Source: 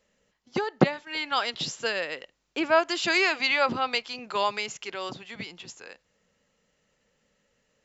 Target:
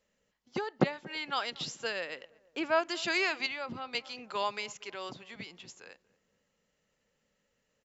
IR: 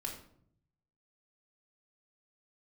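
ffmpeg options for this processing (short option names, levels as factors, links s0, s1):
-filter_complex "[0:a]asplit=2[s0][s1];[s1]adelay=233,lowpass=f=1000:p=1,volume=0.0891,asplit=2[s2][s3];[s3]adelay=233,lowpass=f=1000:p=1,volume=0.53,asplit=2[s4][s5];[s5]adelay=233,lowpass=f=1000:p=1,volume=0.53,asplit=2[s6][s7];[s7]adelay=233,lowpass=f=1000:p=1,volume=0.53[s8];[s0][s2][s4][s6][s8]amix=inputs=5:normalize=0,asettb=1/sr,asplit=3[s9][s10][s11];[s9]atrim=end=3.464[s12];[s10]atrim=start=3.46:end=3.95,asetpts=PTS-STARTPTS,afade=t=in:d=0.004:c=qsin,afade=t=out:st=0.486:d=0.004:c=qsin,acrossover=split=230[s13][s14];[s14]acompressor=threshold=0.0158:ratio=2[s15];[s13][s15]amix=inputs=2:normalize=0[s16];[s11]atrim=start=3.946[s17];[s12][s16]acrossfade=d=0.004:c1=hsin:c2=qsin[s18];[s18][s17]acrossfade=d=0.004:c1=qsin:c2=hsin,volume=0.473"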